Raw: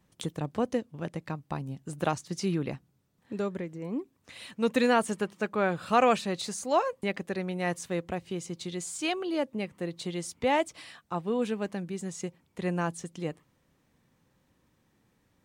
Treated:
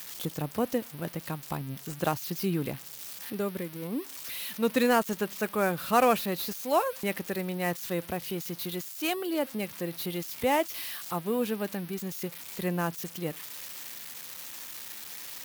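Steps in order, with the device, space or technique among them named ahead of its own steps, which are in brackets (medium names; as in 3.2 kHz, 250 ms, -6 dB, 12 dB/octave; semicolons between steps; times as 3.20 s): budget class-D amplifier (dead-time distortion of 0.079 ms; zero-crossing glitches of -25.5 dBFS)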